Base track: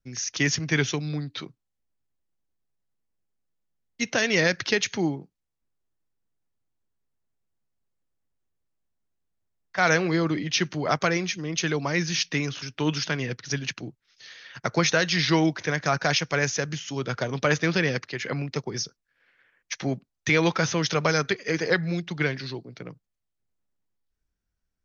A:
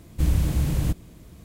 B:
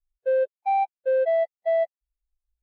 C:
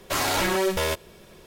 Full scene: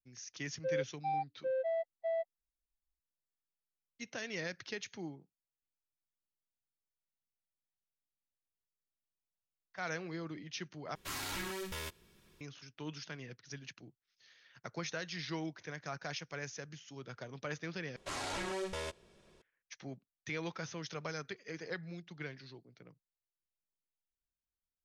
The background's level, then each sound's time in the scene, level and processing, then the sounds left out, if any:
base track -18.5 dB
0.38 add B -13 dB
10.95 replace with C -14 dB + bell 600 Hz -12 dB 1 oct
17.96 replace with C -15 dB + LPF 9400 Hz 24 dB/oct
not used: A

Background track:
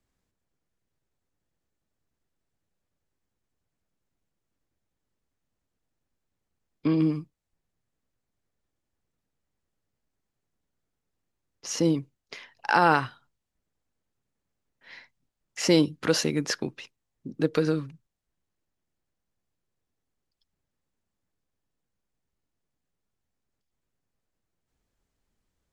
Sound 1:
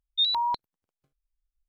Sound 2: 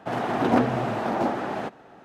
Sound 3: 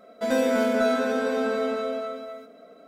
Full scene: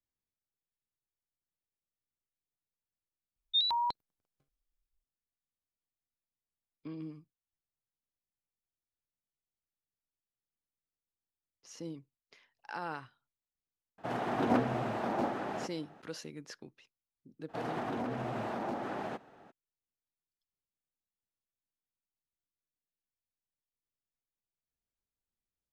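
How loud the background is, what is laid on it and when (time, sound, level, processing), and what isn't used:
background track -19.5 dB
3.36 add 1 -5 dB
13.98 add 2 -8 dB
17.48 add 2 -8.5 dB, fades 0.02 s + limiter -19.5 dBFS
not used: 3

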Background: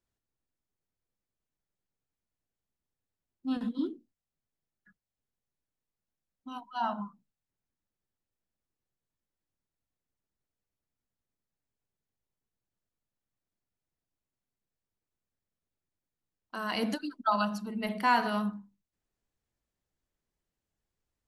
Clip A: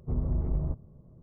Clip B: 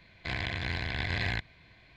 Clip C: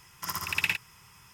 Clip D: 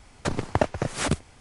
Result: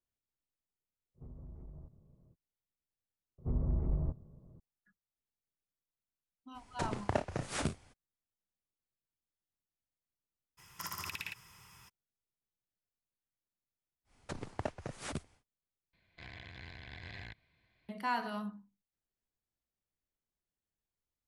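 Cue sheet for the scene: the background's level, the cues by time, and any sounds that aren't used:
background -9 dB
1.14 add A -11 dB, fades 0.05 s + compressor 4:1, threshold -37 dBFS
3.38 replace with A -4 dB
6.54 add D -10.5 dB, fades 0.02 s + early reflections 33 ms -9.5 dB, 56 ms -15.5 dB
10.57 add C -3.5 dB, fades 0.02 s + compressor 10:1, threshold -33 dBFS
14.04 add D -15.5 dB, fades 0.10 s
15.93 replace with B -16.5 dB

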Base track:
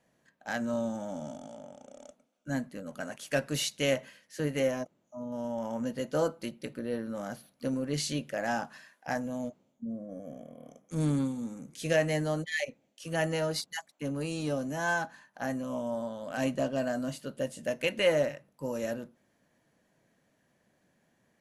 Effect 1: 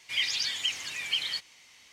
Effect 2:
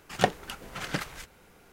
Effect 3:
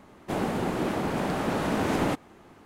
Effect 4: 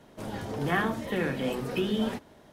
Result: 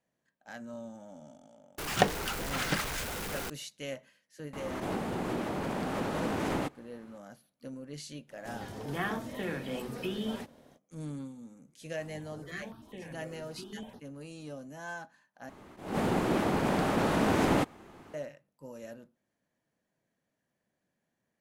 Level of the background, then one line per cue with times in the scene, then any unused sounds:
base track -11.5 dB
1.78 add 2 -2 dB + zero-crossing step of -30 dBFS
4.53 add 3 -6.5 dB + backwards sustainer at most 28 dB/s
8.27 add 4 -7 dB, fades 0.05 s + high shelf 4200 Hz +4.5 dB
11.81 add 4 -14.5 dB + step phaser 9.9 Hz 340–7800 Hz
15.49 replace with 3 + attack slew limiter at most 110 dB/s
not used: 1

